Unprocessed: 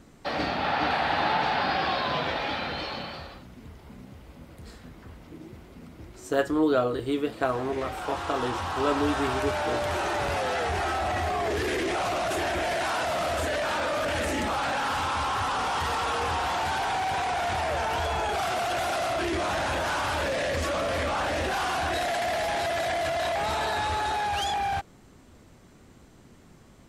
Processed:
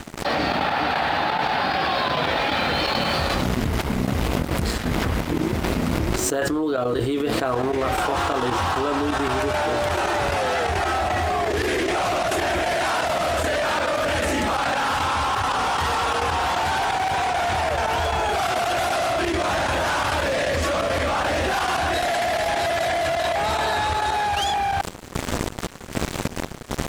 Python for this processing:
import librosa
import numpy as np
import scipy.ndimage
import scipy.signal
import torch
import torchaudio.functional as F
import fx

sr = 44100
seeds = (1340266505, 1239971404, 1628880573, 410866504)

y = np.sign(x) * np.maximum(np.abs(x) - 10.0 ** (-51.0 / 20.0), 0.0)
y = fx.step_gate(y, sr, bpm=173, pattern='..xxxx.x.', floor_db=-12.0, edge_ms=4.5)
y = fx.env_flatten(y, sr, amount_pct=100)
y = y * librosa.db_to_amplitude(-2.0)